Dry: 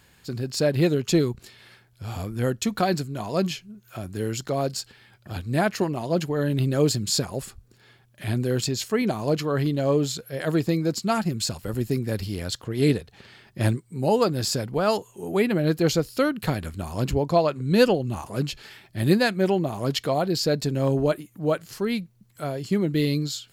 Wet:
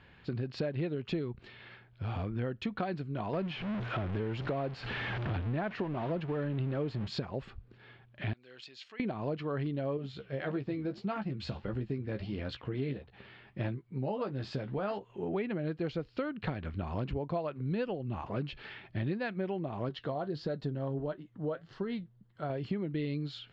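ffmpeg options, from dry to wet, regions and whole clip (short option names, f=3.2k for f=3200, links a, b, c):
-filter_complex "[0:a]asettb=1/sr,asplit=3[a][b][c];[a]atrim=end=3.334[d];[b]atrim=start=3.33:end=7.08,asetpts=PTS-STARTPTS,afade=t=in:d=0.004:c=qsin,afade=t=out:st=3.746:d=0.004:c=qsin,aeval=exprs='val(0)+0.5*0.0376*sgn(val(0))':c=same,highshelf=f=4.3k:g=-5.5[e];[c]atrim=start=7.076[f];[d][e]acrossfade=d=0.004:c1=hsin:c2=qsin[g];[g][f]acrossfade=d=0.004:c1=qsin:c2=hsin,asettb=1/sr,asplit=3[h][i][j];[h]atrim=end=8.334[k];[i]atrim=start=8.33:end=9,asetpts=PTS-STARTPTS,afade=t=in:d=0.004:c=qsin,afade=t=out:st=0.666:d=0.004:c=qsin,acompressor=threshold=-35dB:ratio=2:attack=3.2:release=140:knee=1:detection=peak,bandpass=f=7.2k:t=q:w=0.58[l];[j]atrim=start=8.996[m];[k][l]acrossfade=d=0.004:c1=hsin:c2=qsin[n];[n][m]acrossfade=d=0.004:c1=qsin:c2=hsin,asettb=1/sr,asplit=3[o][p][q];[o]atrim=end=9.974[r];[p]atrim=start=9.97:end=15.1,asetpts=PTS-STARTPTS,afade=t=in:d=0.004:c=qsin,afade=t=out:st=5.126:d=0.004:c=qsin,flanger=delay=0.2:depth=8.7:regen=-89:speed=1.6:shape=triangular,asplit=2[s][t];[t]adelay=15,volume=-7dB[u];[s][u]amix=inputs=2:normalize=0,atrim=end_sample=226233[v];[q]atrim=start=15.096[w];[r][v]acrossfade=d=0.004:c1=hsin:c2=qsin[x];[x][w]acrossfade=d=0.004:c1=qsin:c2=hsin,asettb=1/sr,asplit=3[y][z][aa];[y]atrim=end=19.894[ab];[z]atrim=start=19.89:end=22.5,asetpts=PTS-STARTPTS,afade=t=in:d=0.004:c=qsin,afade=t=out:st=2.606:d=0.004:c=qsin,equalizer=f=2.4k:w=4.5:g=-12,flanger=delay=5.2:depth=3.6:regen=62:speed=1.6:shape=sinusoidal[ac];[aa]atrim=start=22.496[ad];[ab][ac]acrossfade=d=0.004:c1=hsin:c2=qsin[ae];[ae][ad]acrossfade=d=0.004:c1=qsin:c2=hsin,lowpass=f=3.2k:w=0.5412,lowpass=f=3.2k:w=1.3066,acompressor=threshold=-32dB:ratio=6"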